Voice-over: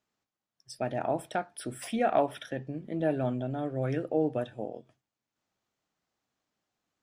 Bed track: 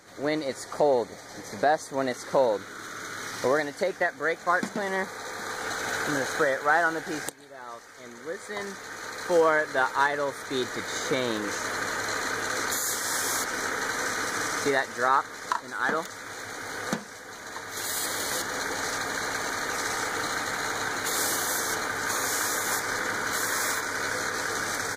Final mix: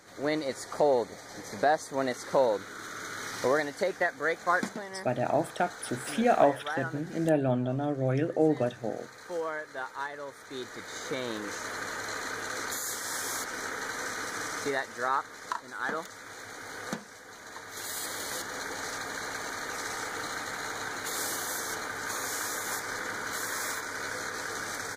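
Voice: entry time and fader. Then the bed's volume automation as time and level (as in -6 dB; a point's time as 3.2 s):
4.25 s, +3.0 dB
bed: 4.67 s -2 dB
4.88 s -12.5 dB
10.13 s -12.5 dB
11.37 s -6 dB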